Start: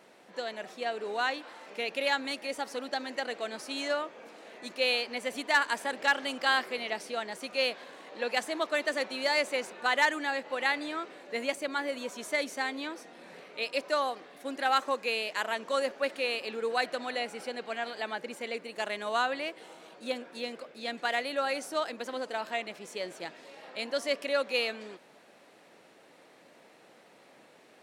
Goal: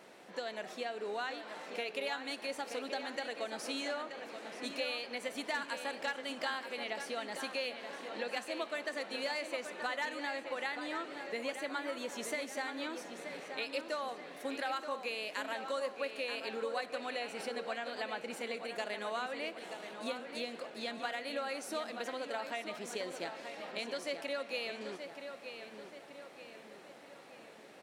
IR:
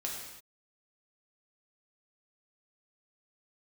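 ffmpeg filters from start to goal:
-filter_complex "[0:a]acompressor=threshold=-38dB:ratio=4,asplit=2[link_01][link_02];[link_02]adelay=929,lowpass=frequency=4900:poles=1,volume=-8dB,asplit=2[link_03][link_04];[link_04]adelay=929,lowpass=frequency=4900:poles=1,volume=0.5,asplit=2[link_05][link_06];[link_06]adelay=929,lowpass=frequency=4900:poles=1,volume=0.5,asplit=2[link_07][link_08];[link_08]adelay=929,lowpass=frequency=4900:poles=1,volume=0.5,asplit=2[link_09][link_10];[link_10]adelay=929,lowpass=frequency=4900:poles=1,volume=0.5,asplit=2[link_11][link_12];[link_12]adelay=929,lowpass=frequency=4900:poles=1,volume=0.5[link_13];[link_01][link_03][link_05][link_07][link_09][link_11][link_13]amix=inputs=7:normalize=0,asplit=2[link_14][link_15];[1:a]atrim=start_sample=2205[link_16];[link_15][link_16]afir=irnorm=-1:irlink=0,volume=-14dB[link_17];[link_14][link_17]amix=inputs=2:normalize=0"

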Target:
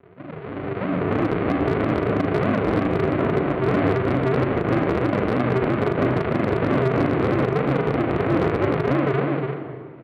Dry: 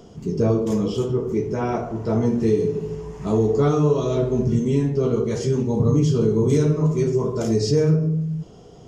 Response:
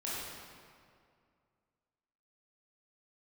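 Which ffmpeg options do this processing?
-filter_complex "[0:a]aresample=11025,acrusher=samples=29:mix=1:aa=0.000001:lfo=1:lforange=17.4:lforate=3.5,aresample=44100,highpass=170,equalizer=frequency=230:width_type=q:width=4:gain=-5,equalizer=frequency=330:width_type=q:width=4:gain=6,equalizer=frequency=470:width_type=q:width=4:gain=5,equalizer=frequency=1000:width_type=q:width=4:gain=-6,equalizer=frequency=1900:width_type=q:width=4:gain=-4,lowpass=frequency=2400:width=0.5412,lowpass=frequency=2400:width=1.3066,asplit=2[link_01][link_02];[1:a]atrim=start_sample=2205[link_03];[link_02][link_03]afir=irnorm=-1:irlink=0,volume=-11.5dB[link_04];[link_01][link_04]amix=inputs=2:normalize=0,acompressor=threshold=-27dB:ratio=8,lowshelf=frequency=270:gain=-6,aecho=1:1:34|69:0.501|0.282,alimiter=limit=-23.5dB:level=0:latency=1:release=107,dynaudnorm=framelen=140:gausssize=11:maxgain=15dB,asoftclip=type=hard:threshold=-10.5dB,asetrate=38984,aresample=44100"

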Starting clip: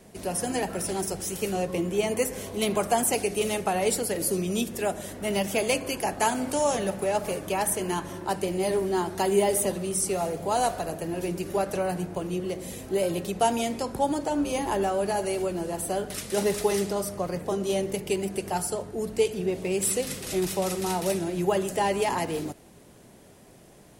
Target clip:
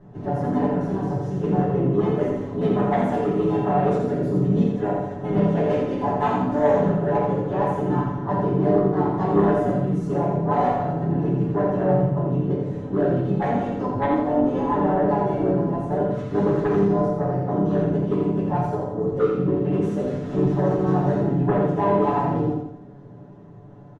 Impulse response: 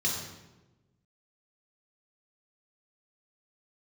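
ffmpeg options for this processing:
-filter_complex "[0:a]lowpass=1100,asplit=4[link_01][link_02][link_03][link_04];[link_02]asetrate=33038,aresample=44100,atempo=1.33484,volume=-6dB[link_05];[link_03]asetrate=37084,aresample=44100,atempo=1.18921,volume=-7dB[link_06];[link_04]asetrate=52444,aresample=44100,atempo=0.840896,volume=-8dB[link_07];[link_01][link_05][link_06][link_07]amix=inputs=4:normalize=0,aecho=1:1:7:0.8,asplit=2[link_08][link_09];[link_09]aeval=exprs='0.668*sin(PI/2*3.55*val(0)/0.668)':channel_layout=same,volume=-9dB[link_10];[link_08][link_10]amix=inputs=2:normalize=0,aecho=1:1:85|170|255|340|425:0.596|0.262|0.115|0.0507|0.0223,asplit=2[link_11][link_12];[1:a]atrim=start_sample=2205,atrim=end_sample=3969[link_13];[link_12][link_13]afir=irnorm=-1:irlink=0,volume=-6.5dB[link_14];[link_11][link_14]amix=inputs=2:normalize=0,volume=-9dB"

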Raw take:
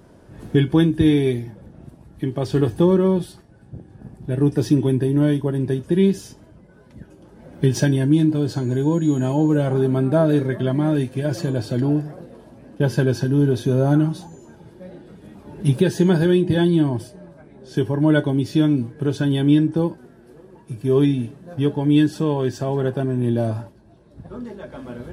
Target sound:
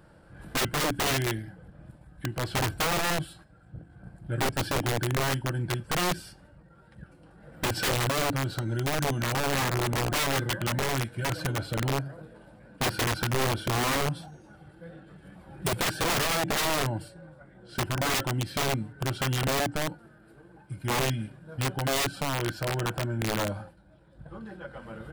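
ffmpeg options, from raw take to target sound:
ffmpeg -i in.wav -af "asetrate=40440,aresample=44100,atempo=1.09051,equalizer=frequency=100:width_type=o:width=0.33:gain=-7,equalizer=frequency=250:width_type=o:width=0.33:gain=-12,equalizer=frequency=400:width_type=o:width=0.33:gain=-9,equalizer=frequency=1600:width_type=o:width=0.33:gain=9,equalizer=frequency=6300:width_type=o:width=0.33:gain=-11,aeval=exprs='(mod(7.5*val(0)+1,2)-1)/7.5':channel_layout=same,volume=-4dB" out.wav

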